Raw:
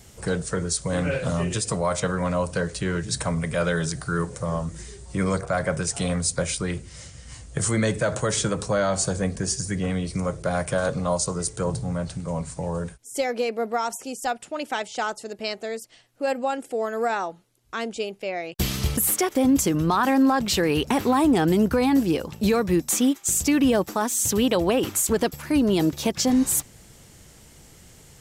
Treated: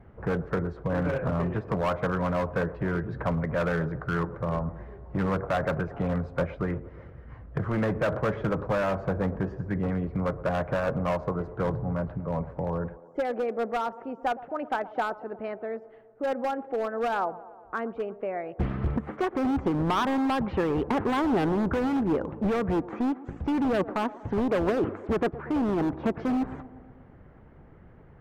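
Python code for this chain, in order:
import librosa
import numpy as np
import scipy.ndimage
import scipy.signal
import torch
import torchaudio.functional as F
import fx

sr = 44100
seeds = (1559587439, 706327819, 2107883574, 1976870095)

y = scipy.signal.sosfilt(scipy.signal.butter(4, 1600.0, 'lowpass', fs=sr, output='sos'), x)
y = np.clip(y, -10.0 ** (-21.0 / 20.0), 10.0 ** (-21.0 / 20.0))
y = fx.hpss(y, sr, part='harmonic', gain_db=-4)
y = fx.echo_wet_bandpass(y, sr, ms=118, feedback_pct=64, hz=540.0, wet_db=-15.5)
y = y * 10.0 ** (1.5 / 20.0)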